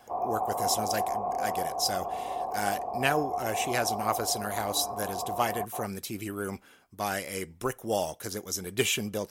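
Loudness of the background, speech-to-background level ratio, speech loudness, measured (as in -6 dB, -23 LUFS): -33.0 LUFS, 1.5 dB, -31.5 LUFS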